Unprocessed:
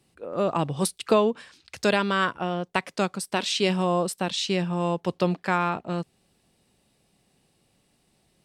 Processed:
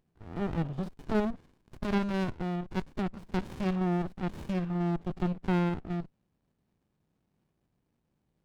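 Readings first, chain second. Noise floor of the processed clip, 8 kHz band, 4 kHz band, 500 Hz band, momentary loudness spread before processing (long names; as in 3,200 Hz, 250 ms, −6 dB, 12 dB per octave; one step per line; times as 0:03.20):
−78 dBFS, below −20 dB, −18.0 dB, −10.5 dB, 8 LU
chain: spectrum averaged block by block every 50 ms
treble cut that deepens with the level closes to 2,800 Hz, closed at −23 dBFS
windowed peak hold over 65 samples
level −6 dB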